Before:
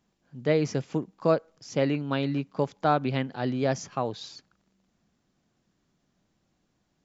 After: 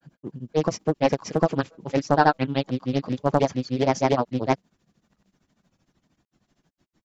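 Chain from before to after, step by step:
spectral magnitudes quantised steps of 15 dB
granular cloud 100 ms, grains 13 per second, spray 838 ms
highs frequency-modulated by the lows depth 0.62 ms
level +8 dB

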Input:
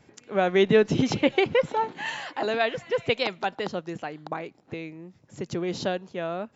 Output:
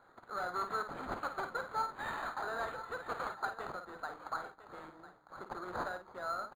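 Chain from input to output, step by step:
variable-slope delta modulation 32 kbit/s
in parallel at −0.5 dB: downward compressor, threshold −33 dBFS, peak gain reduction 17 dB
on the sum: gain into a clipping stage and back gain 21.5 dB
pair of resonant band-passes 2,500 Hz, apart 1.8 octaves
double-tracking delay 50 ms −8 dB
single-tap delay 1,002 ms −13.5 dB
linearly interpolated sample-rate reduction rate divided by 8×
level +4.5 dB

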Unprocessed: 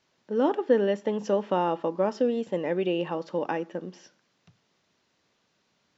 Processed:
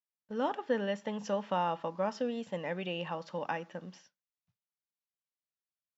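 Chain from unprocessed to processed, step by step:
downward expander −44 dBFS
parametric band 360 Hz −14.5 dB 0.97 octaves
level −2 dB

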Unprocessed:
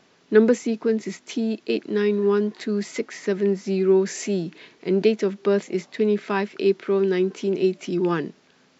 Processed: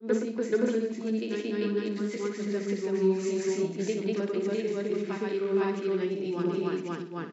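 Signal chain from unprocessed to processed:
tempo change 1.2×
granular cloud 251 ms, grains 29 per second, spray 412 ms, pitch spread up and down by 0 semitones
flutter between parallel walls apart 10.2 metres, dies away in 0.4 s

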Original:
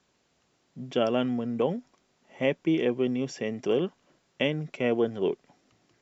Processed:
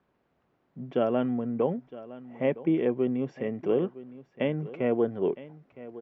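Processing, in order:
low-pass filter 1,600 Hz 12 dB per octave
on a send: single-tap delay 962 ms −17 dB

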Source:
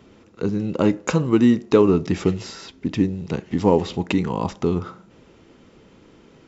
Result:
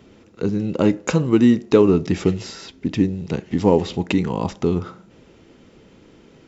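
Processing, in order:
parametric band 1,100 Hz −3.5 dB 0.74 octaves
level +1.5 dB

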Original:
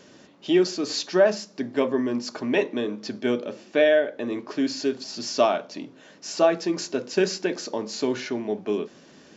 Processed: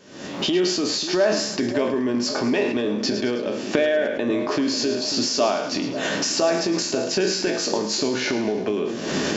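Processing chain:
peak hold with a decay on every bin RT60 0.33 s
camcorder AGC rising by 74 dB per second
on a send: echo with a time of its own for lows and highs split 810 Hz, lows 542 ms, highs 107 ms, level −11 dB
on the sum: level that may fall only so fast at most 47 dB per second
level −2.5 dB

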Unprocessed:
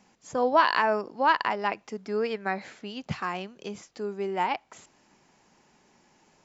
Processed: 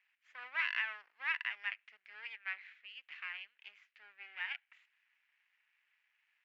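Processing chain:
half-wave rectification
flat-topped band-pass 2,200 Hz, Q 1.9
level −1.5 dB

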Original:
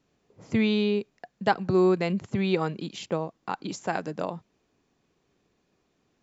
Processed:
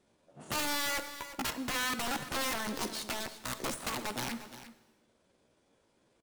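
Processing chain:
stylus tracing distortion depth 0.15 ms
downward compressor 16 to 1, threshold −25 dBFS, peak gain reduction 10.5 dB
wrap-around overflow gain 28.5 dB
pitch shifter +5.5 semitones
single-tap delay 350 ms −13.5 dB
reverb whose tail is shaped and stops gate 410 ms falling, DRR 10.5 dB

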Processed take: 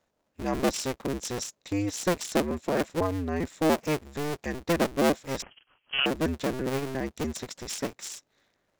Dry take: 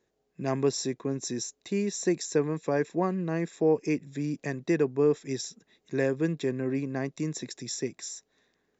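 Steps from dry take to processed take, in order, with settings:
sub-harmonics by changed cycles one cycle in 2, inverted
0:05.42–0:06.06: voice inversion scrambler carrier 3,200 Hz

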